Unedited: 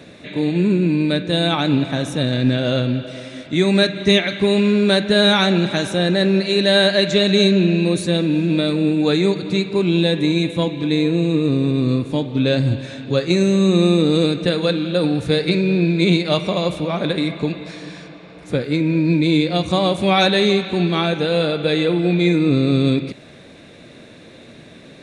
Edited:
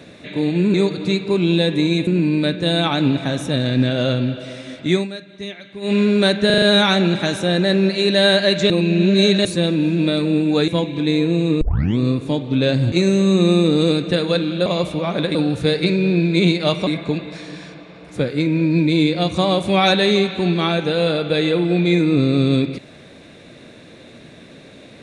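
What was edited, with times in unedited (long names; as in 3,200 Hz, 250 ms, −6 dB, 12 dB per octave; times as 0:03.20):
0:03.61–0:04.62: duck −16.5 dB, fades 0.14 s
0:05.13: stutter 0.04 s, 5 plays
0:07.21–0:07.96: reverse
0:09.19–0:10.52: move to 0:00.74
0:11.45: tape start 0.38 s
0:12.76–0:13.26: remove
0:16.52–0:17.21: move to 0:15.00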